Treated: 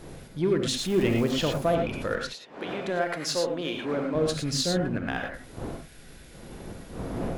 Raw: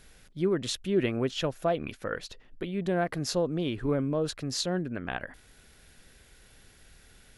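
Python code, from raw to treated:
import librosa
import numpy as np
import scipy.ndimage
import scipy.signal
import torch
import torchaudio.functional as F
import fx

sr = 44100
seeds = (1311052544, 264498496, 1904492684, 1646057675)

p1 = fx.dmg_wind(x, sr, seeds[0], corner_hz=390.0, level_db=-42.0)
p2 = fx.dmg_crackle(p1, sr, seeds[1], per_s=510.0, level_db=-37.0, at=(0.77, 1.56), fade=0.02)
p3 = fx.weighting(p2, sr, curve='A', at=(2.22, 4.15))
p4 = np.clip(10.0 ** (31.0 / 20.0) * p3, -1.0, 1.0) / 10.0 ** (31.0 / 20.0)
p5 = p3 + (p4 * librosa.db_to_amplitude(-6.0))
y = fx.rev_gated(p5, sr, seeds[2], gate_ms=130, shape='rising', drr_db=2.5)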